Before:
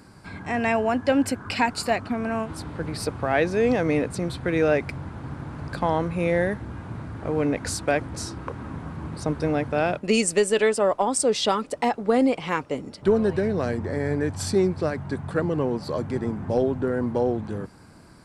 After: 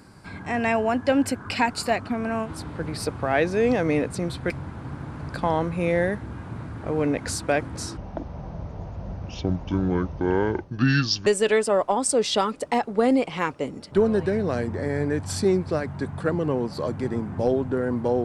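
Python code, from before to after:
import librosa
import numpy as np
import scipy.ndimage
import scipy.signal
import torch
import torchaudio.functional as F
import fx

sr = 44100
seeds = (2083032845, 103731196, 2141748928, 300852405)

y = fx.edit(x, sr, fx.cut(start_s=4.5, length_s=0.39),
    fx.speed_span(start_s=8.36, length_s=2.01, speed=0.61), tone=tone)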